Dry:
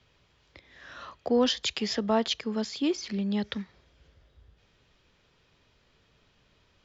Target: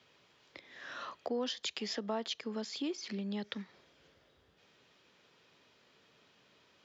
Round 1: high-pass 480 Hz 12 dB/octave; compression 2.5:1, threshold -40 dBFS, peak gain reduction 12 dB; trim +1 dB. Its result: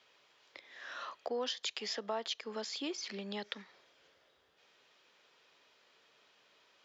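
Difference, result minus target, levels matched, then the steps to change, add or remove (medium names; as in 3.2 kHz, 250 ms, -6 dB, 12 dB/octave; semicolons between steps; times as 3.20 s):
250 Hz band -6.0 dB
change: high-pass 210 Hz 12 dB/octave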